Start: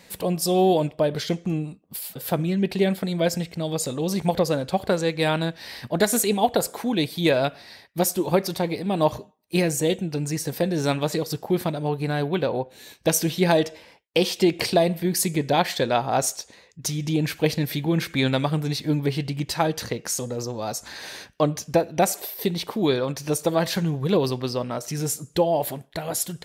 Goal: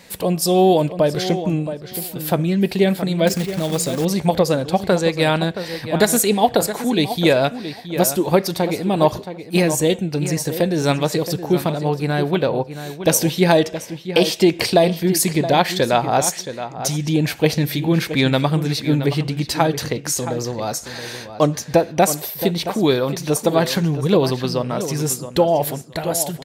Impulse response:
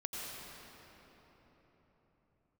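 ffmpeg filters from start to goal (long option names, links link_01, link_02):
-filter_complex "[0:a]asplit=2[link_01][link_02];[link_02]adelay=672,lowpass=frequency=3700:poles=1,volume=-11dB,asplit=2[link_03][link_04];[link_04]adelay=672,lowpass=frequency=3700:poles=1,volume=0.18[link_05];[link_01][link_03][link_05]amix=inputs=3:normalize=0,asettb=1/sr,asplit=3[link_06][link_07][link_08];[link_06]atrim=end=3.274[link_09];[link_07]atrim=start=3.27:end=4.05,asetpts=PTS-STARTPTS,afade=type=in:duration=0.004:curve=qsin,afade=type=out:start_time=0.776:duration=0.004:curve=qsin,acrusher=bits=3:mode=log:mix=0:aa=0.000001[link_10];[link_08]atrim=start=4.046[link_11];[link_09][link_10]acrossfade=duration=0.004:curve1=hsin:curve2=qsin[link_12];[link_12][link_11]acrossfade=duration=0.004:curve1=qsin:curve2=hsin,volume=5dB"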